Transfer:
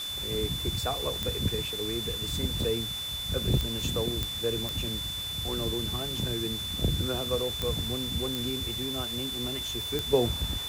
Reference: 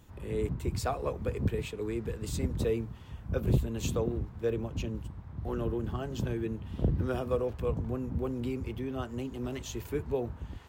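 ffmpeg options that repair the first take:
ffmpeg -i in.wav -af "adeclick=threshold=4,bandreject=frequency=3500:width=30,afwtdn=0.0079,asetnsamples=nb_out_samples=441:pad=0,asendcmd='10.13 volume volume -8dB',volume=0dB" out.wav

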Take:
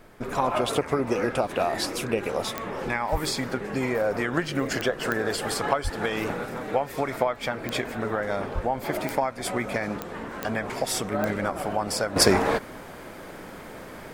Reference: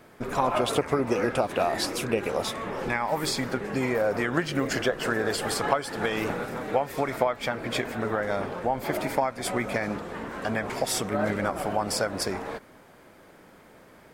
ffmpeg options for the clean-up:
ffmpeg -i in.wav -filter_complex "[0:a]adeclick=threshold=4,asplit=3[link_01][link_02][link_03];[link_01]afade=type=out:start_time=3.11:duration=0.02[link_04];[link_02]highpass=frequency=140:width=0.5412,highpass=frequency=140:width=1.3066,afade=type=in:start_time=3.11:duration=0.02,afade=type=out:start_time=3.23:duration=0.02[link_05];[link_03]afade=type=in:start_time=3.23:duration=0.02[link_06];[link_04][link_05][link_06]amix=inputs=3:normalize=0,asplit=3[link_07][link_08][link_09];[link_07]afade=type=out:start_time=5.83:duration=0.02[link_10];[link_08]highpass=frequency=140:width=0.5412,highpass=frequency=140:width=1.3066,afade=type=in:start_time=5.83:duration=0.02,afade=type=out:start_time=5.95:duration=0.02[link_11];[link_09]afade=type=in:start_time=5.95:duration=0.02[link_12];[link_10][link_11][link_12]amix=inputs=3:normalize=0,asplit=3[link_13][link_14][link_15];[link_13]afade=type=out:start_time=8.54:duration=0.02[link_16];[link_14]highpass=frequency=140:width=0.5412,highpass=frequency=140:width=1.3066,afade=type=in:start_time=8.54:duration=0.02,afade=type=out:start_time=8.66:duration=0.02[link_17];[link_15]afade=type=in:start_time=8.66:duration=0.02[link_18];[link_16][link_17][link_18]amix=inputs=3:normalize=0,agate=range=-21dB:threshold=-33dB,asetnsamples=nb_out_samples=441:pad=0,asendcmd='12.16 volume volume -11.5dB',volume=0dB" out.wav

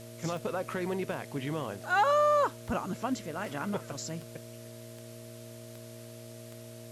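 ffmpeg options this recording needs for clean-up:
ffmpeg -i in.wav -af "adeclick=threshold=4,bandreject=frequency=116.5:width_type=h:width=4,bandreject=frequency=233:width_type=h:width=4,bandreject=frequency=349.5:width_type=h:width=4,bandreject=frequency=466:width_type=h:width=4,bandreject=frequency=582.5:width_type=h:width=4,bandreject=frequency=640:width=30,afftdn=noise_reduction=28:noise_floor=-47" out.wav

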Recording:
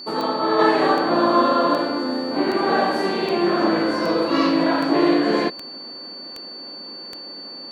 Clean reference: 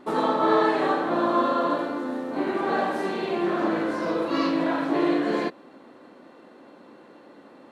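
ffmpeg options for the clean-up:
ffmpeg -i in.wav -af "adeclick=threshold=4,bandreject=frequency=4500:width=30,asetnsamples=nb_out_samples=441:pad=0,asendcmd='0.59 volume volume -5.5dB',volume=0dB" out.wav

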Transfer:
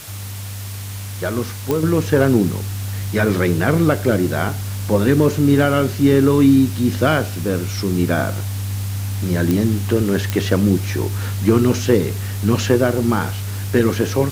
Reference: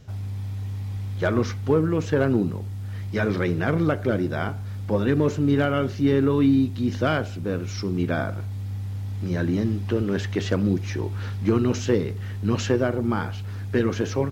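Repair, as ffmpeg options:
ffmpeg -i in.wav -af "adeclick=threshold=4,afwtdn=0.018,asetnsamples=nb_out_samples=441:pad=0,asendcmd='1.83 volume volume -6.5dB',volume=0dB" out.wav

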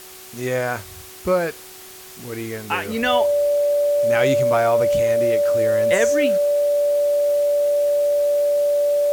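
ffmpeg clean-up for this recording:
ffmpeg -i in.wav -af "bandreject=frequency=373.7:width_type=h:width=4,bandreject=frequency=747.4:width_type=h:width=4,bandreject=frequency=1121.1:width_type=h:width=4,bandreject=frequency=580:width=30,afwtdn=0.01" out.wav

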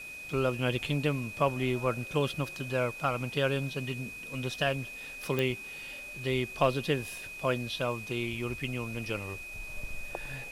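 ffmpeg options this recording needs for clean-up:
ffmpeg -i in.wav -af "adeclick=threshold=4,bandreject=frequency=2500:width=30,afwtdn=0.0022" out.wav

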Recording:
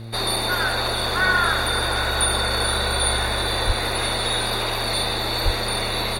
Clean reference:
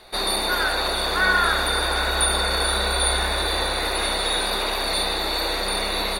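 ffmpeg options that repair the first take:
ffmpeg -i in.wav -filter_complex "[0:a]adeclick=threshold=4,bandreject=frequency=113.8:width_type=h:width=4,bandreject=frequency=227.6:width_type=h:width=4,bandreject=frequency=341.4:width_type=h:width=4,bandreject=frequency=455.2:width_type=h:width=4,bandreject=frequency=569:width_type=h:width=4,asplit=3[link_01][link_02][link_03];[link_01]afade=type=out:start_time=3.66:duration=0.02[link_04];[link_02]highpass=frequency=140:width=0.5412,highpass=frequency=140:width=1.3066,afade=type=in:start_time=3.66:duration=0.02,afade=type=out:start_time=3.78:duration=0.02[link_05];[link_03]afade=type=in:start_time=3.78:duration=0.02[link_06];[link_04][link_05][link_06]amix=inputs=3:normalize=0,asplit=3[link_07][link_08][link_09];[link_07]afade=type=out:start_time=5.44:duration=0.02[link_10];[link_08]highpass=frequency=140:width=0.5412,highpass=frequency=140:width=1.3066,afade=type=in:start_time=5.44:duration=0.02,afade=type=out:start_time=5.56:duration=0.02[link_11];[link_09]afade=type=in:start_time=5.56:duration=0.02[link_12];[link_10][link_11][link_12]amix=inputs=3:normalize=0" out.wav

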